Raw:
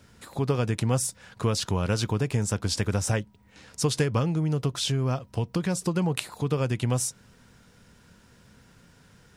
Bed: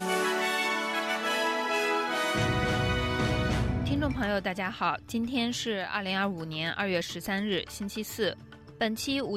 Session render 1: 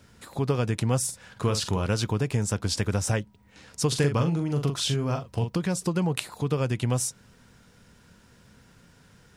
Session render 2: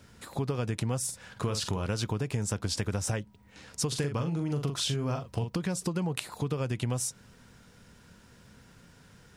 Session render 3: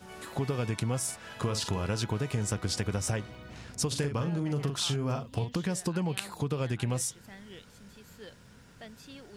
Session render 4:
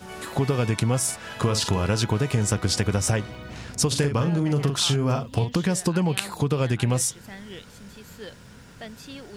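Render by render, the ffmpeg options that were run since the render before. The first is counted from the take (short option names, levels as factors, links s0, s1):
-filter_complex "[0:a]asettb=1/sr,asplit=3[s0][s1][s2];[s0]atrim=end=1.044[s3];[s1]atrim=start=1.04:end=1.86,asetpts=PTS-STARTPTS,afade=t=in:d=0.004:c=qsin,afade=t=out:st=0.816:d=0.004:c=qsin,asplit=2[s4][s5];[s5]adelay=48,volume=0.355[s6];[s4][s6]amix=inputs=2:normalize=0,atrim=end_sample=36162[s7];[s2]atrim=start=1.856[s8];[s3][s7]acrossfade=d=0.004:c1=hsin:c2=qsin[s9];[s9][s8]acrossfade=d=0.004:c1=qsin:c2=hsin,asettb=1/sr,asplit=3[s10][s11][s12];[s10]atrim=end=3.884[s13];[s11]atrim=start=3.88:end=5.5,asetpts=PTS-STARTPTS,afade=t=in:d=0.004:c=qsin,afade=t=out:st=1.616:d=0.004:c=qsin,asplit=2[s14][s15];[s15]adelay=42,volume=0.501[s16];[s14][s16]amix=inputs=2:normalize=0,atrim=end_sample=71442[s17];[s12]atrim=start=5.496[s18];[s13][s17]acrossfade=d=0.004:c1=hsin:c2=qsin[s19];[s19][s18]acrossfade=d=0.004:c1=qsin:c2=hsin"
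-af "acompressor=threshold=0.0447:ratio=6"
-filter_complex "[1:a]volume=0.112[s0];[0:a][s0]amix=inputs=2:normalize=0"
-af "volume=2.51"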